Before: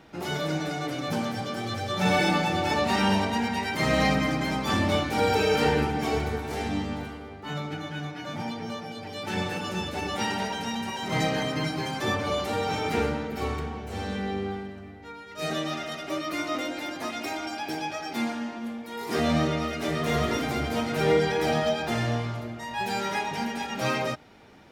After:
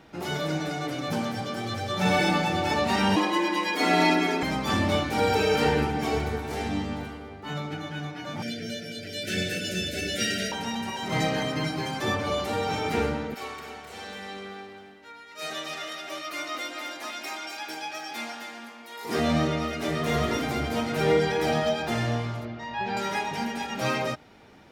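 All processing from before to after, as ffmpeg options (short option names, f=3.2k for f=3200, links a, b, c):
-filter_complex "[0:a]asettb=1/sr,asplit=3[a][b][c];[a]atrim=end=3.164[d];[b]atrim=start=3.16:end=4.43,asetpts=PTS-STARTPTS,afade=t=in:d=0.004:c=qsin,afade=t=out:st=1.266:d=0.004:c=qsin,afreqshift=110,aecho=1:1:6.5:0.54,atrim=end_sample=56007[e];[c]atrim=start=4.426[f];[d][e]acrossfade=d=0.004:c1=hsin:c2=qsin[g];[g][f]acrossfade=d=0.004:c1=qsin:c2=hsin,asettb=1/sr,asplit=3[h][i][j];[h]atrim=end=8.424[k];[i]atrim=start=8.42:end=10.52,asetpts=PTS-STARTPTS,afade=t=in:d=0.004:c=qsin,afade=t=out:st=2.096:d=0.004:c=qsin,asuperstop=centerf=990:order=20:qfactor=1.5,highshelf=f=2.8k:g=8.5[l];[j]atrim=start=10.516[m];[k][l]acrossfade=d=0.004:c1=hsin:c2=qsin[n];[n][m]acrossfade=d=0.004:c1=qsin:c2=hsin,asettb=1/sr,asplit=3[o][p][q];[o]atrim=end=13.344[r];[p]atrim=start=13.34:end=19.05,asetpts=PTS-STARTPTS,afade=t=in:d=0.004:c=qsin,afade=t=out:st=5.706:d=0.004:c=qsin,highpass=f=1.1k:p=1,asoftclip=type=hard:threshold=-23.5dB,aecho=1:1:260:0.501,atrim=end_sample=251811[s];[q]atrim=start=19.046[t];[r][s]acrossfade=d=0.004:c1=hsin:c2=qsin[u];[u][t]acrossfade=d=0.004:c1=qsin:c2=hsin,asettb=1/sr,asplit=3[v][w][x];[v]atrim=end=22.454[y];[w]atrim=start=22.45:end=22.97,asetpts=PTS-STARTPTS,afade=t=in:d=0.004:c=qsin,afade=t=out:st=0.516:d=0.004:c=qsin,lowpass=f=5.2k:w=0.5412,lowpass=f=5.2k:w=1.3066,acrossover=split=2900[z][aa];[aa]acompressor=threshold=-47dB:ratio=4:attack=1:release=60[ab];[z][ab]amix=inputs=2:normalize=0[ac];[x]atrim=start=22.966[ad];[y][ac]acrossfade=d=0.004:c1=hsin:c2=qsin[ae];[ae][ad]acrossfade=d=0.004:c1=qsin:c2=hsin"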